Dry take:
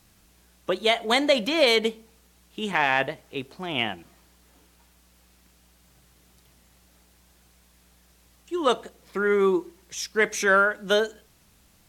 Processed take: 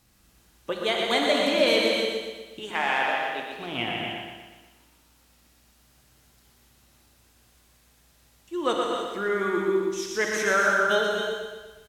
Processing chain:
0:02.59–0:03.50: high-pass filter 330 Hz 12 dB per octave
repeating echo 121 ms, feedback 53%, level −5.5 dB
reverb whose tail is shaped and stops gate 340 ms flat, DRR 0 dB
level −5 dB

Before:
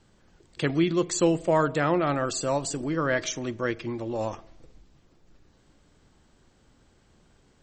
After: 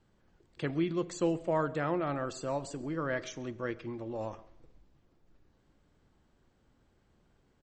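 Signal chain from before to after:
high-shelf EQ 3,900 Hz −10 dB
single-tap delay 136 ms −23.5 dB
coupled-rooms reverb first 0.84 s, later 2.5 s, DRR 19.5 dB
level −7.5 dB

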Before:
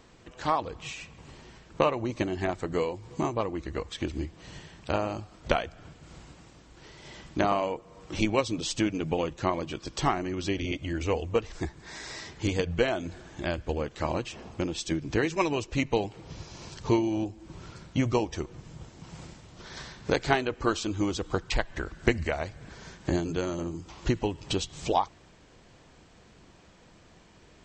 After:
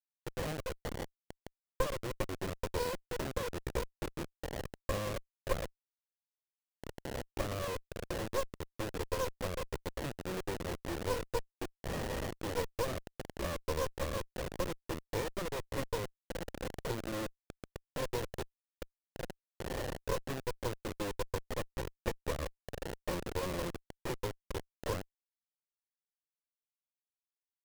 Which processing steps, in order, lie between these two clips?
pitch vibrato 11 Hz 22 cents
Butterworth high-pass 330 Hz 36 dB per octave
downward compressor 10 to 1, threshold −40 dBFS, peak gain reduction 21.5 dB
formant resonators in series e
bit reduction 9 bits
windowed peak hold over 33 samples
level +17.5 dB

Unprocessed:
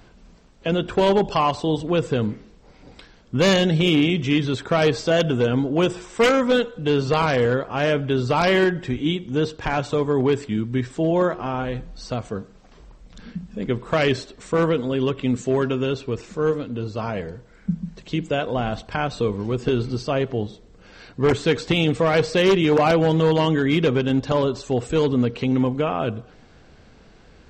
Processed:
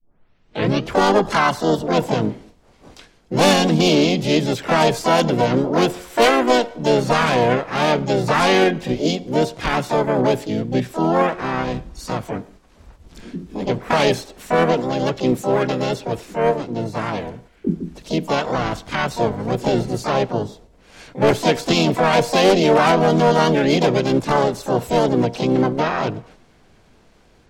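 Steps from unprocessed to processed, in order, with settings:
turntable start at the beginning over 0.95 s
noise gate −46 dBFS, range −6 dB
parametric band 61 Hz −3.5 dB 0.91 octaves
pitch-shifted copies added +4 semitones −6 dB, +7 semitones −3 dB, +12 semitones −7 dB

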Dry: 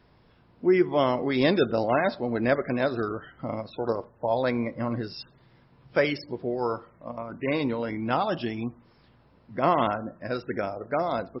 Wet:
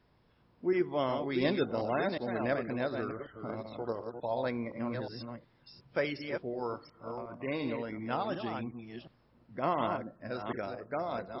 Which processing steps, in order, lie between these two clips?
delay that plays each chunk backwards 363 ms, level −6 dB
level −8.5 dB

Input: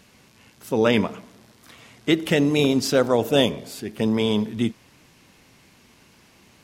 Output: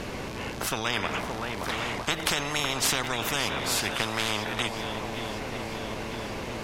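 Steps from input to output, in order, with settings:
0:03.80–0:04.31: variable-slope delta modulation 64 kbit/s
downward compressor, threshold −22 dBFS, peak gain reduction 9.5 dB
spectral tilt −3.5 dB per octave
feedback echo with a long and a short gap by turns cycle 953 ms, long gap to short 1.5 to 1, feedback 50%, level −20 dB
every bin compressed towards the loudest bin 10 to 1
level +2 dB

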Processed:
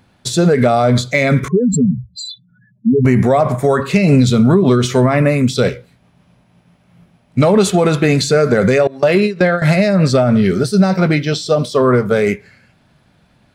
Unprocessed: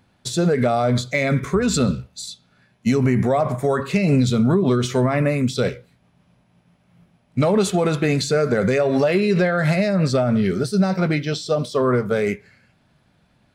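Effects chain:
0:01.48–0:03.05: expanding power law on the bin magnitudes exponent 3.9
0:08.87–0:09.62: noise gate with hold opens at −10 dBFS
level +6.5 dB

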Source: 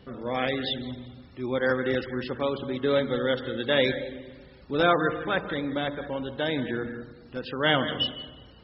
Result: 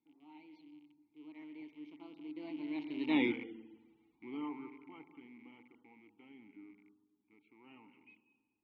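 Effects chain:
loose part that buzzes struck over −39 dBFS, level −25 dBFS
source passing by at 0:03.19, 57 m/s, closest 9.1 metres
formant filter u
level +6.5 dB

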